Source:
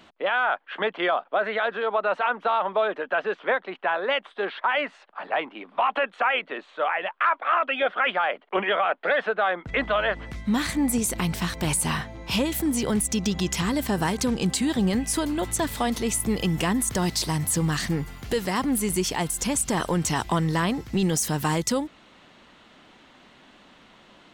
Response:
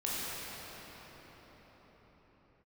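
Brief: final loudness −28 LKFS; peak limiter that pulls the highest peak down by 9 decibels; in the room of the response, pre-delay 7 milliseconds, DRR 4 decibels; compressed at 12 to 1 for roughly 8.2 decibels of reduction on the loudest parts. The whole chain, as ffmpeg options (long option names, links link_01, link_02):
-filter_complex "[0:a]acompressor=threshold=-27dB:ratio=12,alimiter=level_in=0.5dB:limit=-24dB:level=0:latency=1,volume=-0.5dB,asplit=2[link_01][link_02];[1:a]atrim=start_sample=2205,adelay=7[link_03];[link_02][link_03]afir=irnorm=-1:irlink=0,volume=-11dB[link_04];[link_01][link_04]amix=inputs=2:normalize=0,volume=4.5dB"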